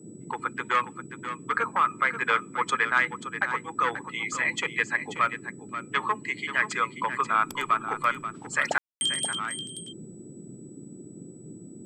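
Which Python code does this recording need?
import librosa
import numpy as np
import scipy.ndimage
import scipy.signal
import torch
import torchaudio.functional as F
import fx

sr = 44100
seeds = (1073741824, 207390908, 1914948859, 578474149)

y = fx.notch(x, sr, hz=7900.0, q=30.0)
y = fx.fix_ambience(y, sr, seeds[0], print_start_s=11.31, print_end_s=11.81, start_s=8.78, end_s=9.01)
y = fx.noise_reduce(y, sr, print_start_s=11.31, print_end_s=11.81, reduce_db=27.0)
y = fx.fix_echo_inverse(y, sr, delay_ms=534, level_db=-10.5)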